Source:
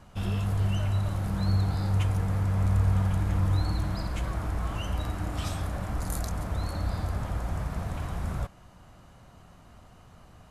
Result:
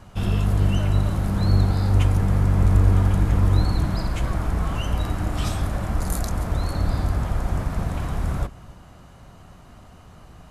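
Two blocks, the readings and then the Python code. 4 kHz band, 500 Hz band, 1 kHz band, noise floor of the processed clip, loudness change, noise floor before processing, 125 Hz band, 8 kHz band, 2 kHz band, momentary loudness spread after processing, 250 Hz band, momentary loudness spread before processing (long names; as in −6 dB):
+5.5 dB, +7.0 dB, +5.5 dB, −47 dBFS, +7.0 dB, −53 dBFS, +6.0 dB, +5.5 dB, +5.5 dB, 8 LU, +7.5 dB, 8 LU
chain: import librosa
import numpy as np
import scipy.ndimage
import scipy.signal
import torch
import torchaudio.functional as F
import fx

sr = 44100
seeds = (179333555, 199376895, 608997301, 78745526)

y = fx.octave_divider(x, sr, octaves=1, level_db=-2.0)
y = y + 10.0 ** (-22.0 / 20.0) * np.pad(y, (int(277 * sr / 1000.0), 0))[:len(y)]
y = y * 10.0 ** (5.5 / 20.0)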